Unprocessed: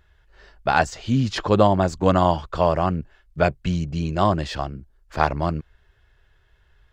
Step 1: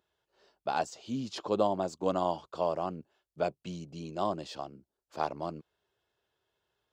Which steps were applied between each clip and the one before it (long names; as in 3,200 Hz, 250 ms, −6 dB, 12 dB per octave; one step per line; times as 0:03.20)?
high-pass filter 260 Hz 12 dB per octave
parametric band 1,800 Hz −12.5 dB 0.98 octaves
level −9 dB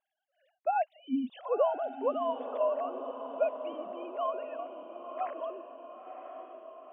three sine waves on the formant tracks
feedback delay with all-pass diffusion 994 ms, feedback 54%, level −8.5 dB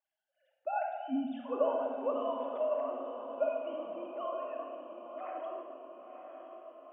rectangular room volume 2,200 cubic metres, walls mixed, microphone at 2.5 metres
level −7 dB